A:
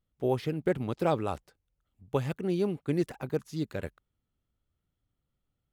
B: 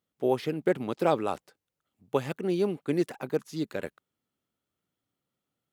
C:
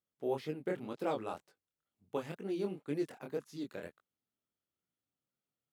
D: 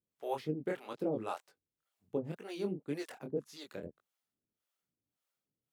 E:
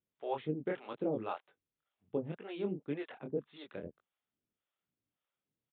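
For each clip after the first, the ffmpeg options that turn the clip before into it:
-af "highpass=210,volume=3dB"
-af "flanger=delay=19.5:depth=7.5:speed=2,volume=-7dB"
-filter_complex "[0:a]acrossover=split=530[a][b];[a]aeval=exprs='val(0)*(1-1/2+1/2*cos(2*PI*1.8*n/s))':c=same[c];[b]aeval=exprs='val(0)*(1-1/2-1/2*cos(2*PI*1.8*n/s))':c=same[d];[c][d]amix=inputs=2:normalize=0,volume=6dB"
-af "aresample=8000,aresample=44100"

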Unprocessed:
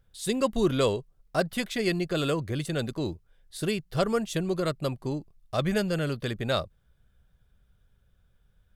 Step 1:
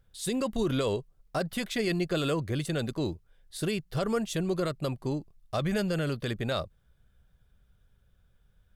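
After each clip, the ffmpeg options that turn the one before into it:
-af "alimiter=limit=-19.5dB:level=0:latency=1:release=34"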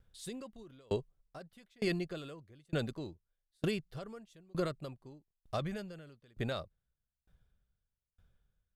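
-af "highshelf=f=8.7k:g=-5.5,aeval=exprs='val(0)*pow(10,-34*if(lt(mod(1.1*n/s,1),2*abs(1.1)/1000),1-mod(1.1*n/s,1)/(2*abs(1.1)/1000),(mod(1.1*n/s,1)-2*abs(1.1)/1000)/(1-2*abs(1.1)/1000))/20)':c=same,volume=-1dB"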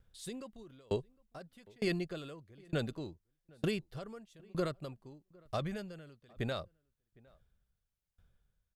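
-filter_complex "[0:a]asplit=2[a][b];[b]adelay=758,volume=-26dB,highshelf=f=4k:g=-17.1[c];[a][c]amix=inputs=2:normalize=0"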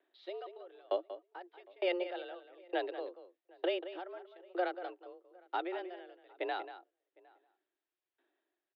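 -filter_complex "[0:a]highpass=f=170:t=q:w=0.5412,highpass=f=170:t=q:w=1.307,lowpass=f=3.4k:t=q:w=0.5176,lowpass=f=3.4k:t=q:w=0.7071,lowpass=f=3.4k:t=q:w=1.932,afreqshift=180,asplit=2[a][b];[b]adelay=186.6,volume=-12dB,highshelf=f=4k:g=-4.2[c];[a][c]amix=inputs=2:normalize=0,volume=1dB"

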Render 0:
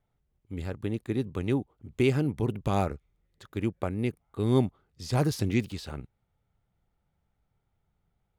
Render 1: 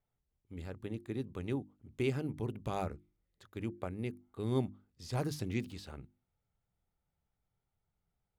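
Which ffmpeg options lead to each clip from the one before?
-af "bandreject=f=50:t=h:w=6,bandreject=f=100:t=h:w=6,bandreject=f=150:t=h:w=6,bandreject=f=200:t=h:w=6,bandreject=f=250:t=h:w=6,bandreject=f=300:t=h:w=6,bandreject=f=350:t=h:w=6,volume=-8.5dB"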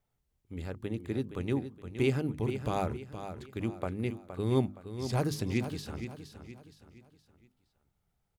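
-af "aecho=1:1:468|936|1404|1872:0.316|0.123|0.0481|0.0188,volume=5dB"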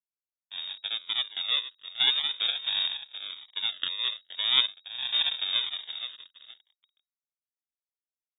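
-af "acrusher=samples=41:mix=1:aa=0.000001:lfo=1:lforange=24.6:lforate=0.44,aeval=exprs='sgn(val(0))*max(abs(val(0))-0.00376,0)':c=same,lowpass=f=3.2k:t=q:w=0.5098,lowpass=f=3.2k:t=q:w=0.6013,lowpass=f=3.2k:t=q:w=0.9,lowpass=f=3.2k:t=q:w=2.563,afreqshift=-3800,volume=3.5dB"

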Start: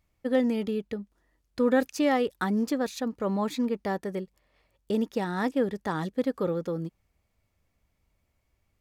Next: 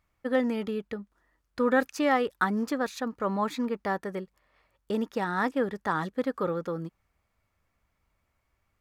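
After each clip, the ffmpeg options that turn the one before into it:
-af "equalizer=f=1.3k:t=o:w=1.4:g=9.5,volume=-3dB"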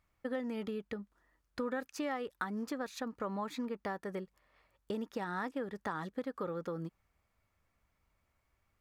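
-af "acompressor=threshold=-33dB:ratio=4,volume=-2.5dB"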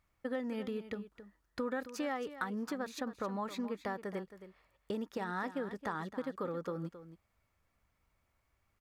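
-af "aecho=1:1:269:0.224"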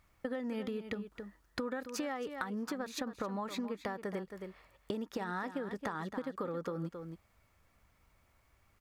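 -af "acompressor=threshold=-43dB:ratio=6,volume=8dB"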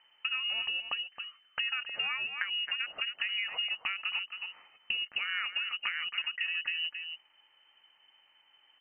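-af "lowpass=f=2.6k:t=q:w=0.5098,lowpass=f=2.6k:t=q:w=0.6013,lowpass=f=2.6k:t=q:w=0.9,lowpass=f=2.6k:t=q:w=2.563,afreqshift=-3100,volume=4dB"

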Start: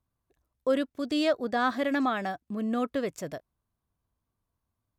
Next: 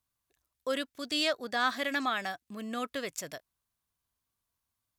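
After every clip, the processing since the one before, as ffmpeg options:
-af "tiltshelf=f=1.2k:g=-8.5,volume=-1.5dB"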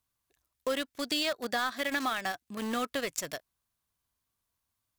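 -filter_complex "[0:a]acompressor=threshold=-33dB:ratio=4,asplit=2[a][b];[b]acrusher=bits=5:mix=0:aa=0.000001,volume=-6dB[c];[a][c]amix=inputs=2:normalize=0,volume=1.5dB"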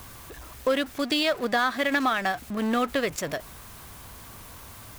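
-filter_complex "[0:a]aeval=exprs='val(0)+0.5*0.01*sgn(val(0))':c=same,asplit=2[a][b];[b]adynamicsmooth=sensitivity=2.5:basefreq=2.7k,volume=1.5dB[c];[a][c]amix=inputs=2:normalize=0"

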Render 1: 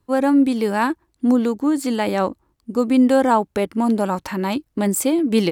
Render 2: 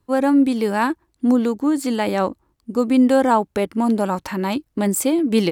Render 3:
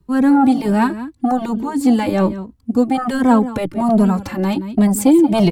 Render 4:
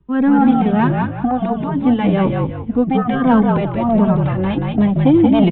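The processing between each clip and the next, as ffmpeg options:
-af anull
-filter_complex "[0:a]aecho=1:1:174:0.168,acrossover=split=280|1400[a][b][c];[a]aeval=exprs='0.251*sin(PI/2*3.16*val(0)/0.251)':c=same[d];[d][b][c]amix=inputs=3:normalize=0,asplit=2[e][f];[f]adelay=2.8,afreqshift=1.3[g];[e][g]amix=inputs=2:normalize=1,volume=2.5dB"
-filter_complex "[0:a]aresample=8000,aresample=44100,asplit=5[a][b][c][d][e];[b]adelay=181,afreqshift=-50,volume=-3dB[f];[c]adelay=362,afreqshift=-100,volume=-12.9dB[g];[d]adelay=543,afreqshift=-150,volume=-22.8dB[h];[e]adelay=724,afreqshift=-200,volume=-32.7dB[i];[a][f][g][h][i]amix=inputs=5:normalize=0,aeval=exprs='1*(cos(1*acos(clip(val(0)/1,-1,1)))-cos(1*PI/2))+0.00708*(cos(8*acos(clip(val(0)/1,-1,1)))-cos(8*PI/2))':c=same,volume=-1dB"

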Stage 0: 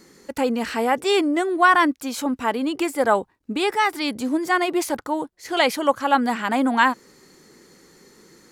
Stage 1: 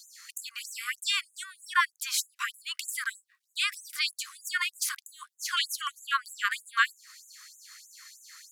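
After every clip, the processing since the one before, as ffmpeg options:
-af "acompressor=threshold=-29dB:ratio=2,equalizer=f=190:w=3.1:g=-11.5,afftfilt=real='re*gte(b*sr/1024,1000*pow(6400/1000,0.5+0.5*sin(2*PI*3.2*pts/sr)))':imag='im*gte(b*sr/1024,1000*pow(6400/1000,0.5+0.5*sin(2*PI*3.2*pts/sr)))':win_size=1024:overlap=0.75,volume=6dB"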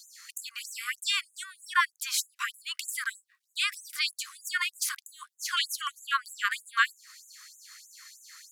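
-af anull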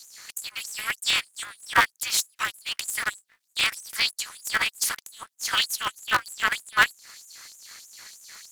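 -af "aeval=exprs='val(0)*sgn(sin(2*PI*110*n/s))':c=same,volume=5dB"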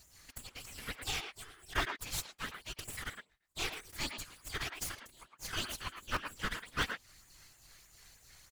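-filter_complex "[0:a]aeval=exprs='max(val(0),0)':c=same,asplit=2[a][b];[b]adelay=110,highpass=300,lowpass=3.4k,asoftclip=type=hard:threshold=-14dB,volume=-6dB[c];[a][c]amix=inputs=2:normalize=0,afftfilt=real='hypot(re,im)*cos(2*PI*random(0))':imag='hypot(re,im)*sin(2*PI*random(1))':win_size=512:overlap=0.75,volume=-4dB"

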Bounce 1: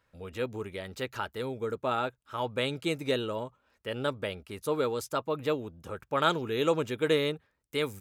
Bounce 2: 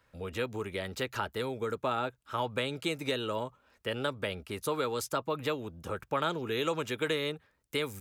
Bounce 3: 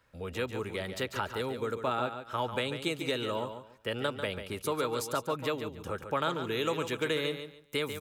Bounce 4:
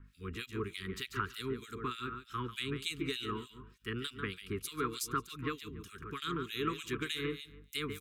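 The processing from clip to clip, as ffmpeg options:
-filter_complex "[0:a]acrossover=split=340|770[a][b][c];[a]acompressor=threshold=-43dB:ratio=4[d];[b]acompressor=threshold=-41dB:ratio=4[e];[c]acompressor=threshold=-36dB:ratio=4[f];[d][e][f]amix=inputs=3:normalize=0,volume=4dB"
-af "aecho=1:1:143|286|429:0.355|0.0816|0.0188"
-filter_complex "[0:a]aeval=exprs='val(0)+0.002*(sin(2*PI*50*n/s)+sin(2*PI*2*50*n/s)/2+sin(2*PI*3*50*n/s)/3+sin(2*PI*4*50*n/s)/4+sin(2*PI*5*50*n/s)/5)':c=same,acrossover=split=2300[a][b];[a]aeval=exprs='val(0)*(1-1/2+1/2*cos(2*PI*3.3*n/s))':c=same[c];[b]aeval=exprs='val(0)*(1-1/2-1/2*cos(2*PI*3.3*n/s))':c=same[d];[c][d]amix=inputs=2:normalize=0,asuperstop=centerf=670:order=12:qfactor=1.1,volume=1.5dB"

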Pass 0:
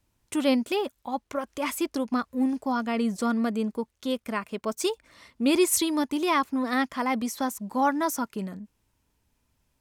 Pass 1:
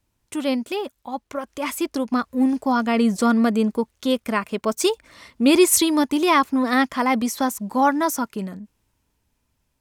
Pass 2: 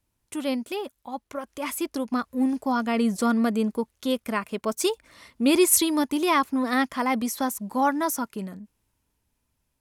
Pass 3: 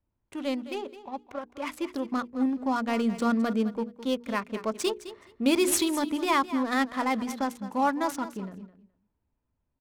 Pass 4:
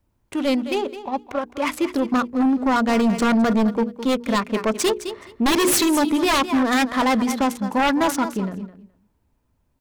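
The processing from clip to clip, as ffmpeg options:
-af "dynaudnorm=f=510:g=9:m=10dB"
-af "equalizer=f=11k:w=2.4:g=6.5,volume=-4.5dB"
-af "adynamicsmooth=sensitivity=8:basefreq=1.5k,bandreject=f=60:t=h:w=6,bandreject=f=120:t=h:w=6,bandreject=f=180:t=h:w=6,bandreject=f=240:t=h:w=6,bandreject=f=300:t=h:w=6,bandreject=f=360:t=h:w=6,bandreject=f=420:t=h:w=6,bandreject=f=480:t=h:w=6,aecho=1:1:211|422:0.2|0.0299,volume=-2.5dB"
-af "aeval=exprs='0.299*sin(PI/2*3.98*val(0)/0.299)':c=same,volume=-4dB"

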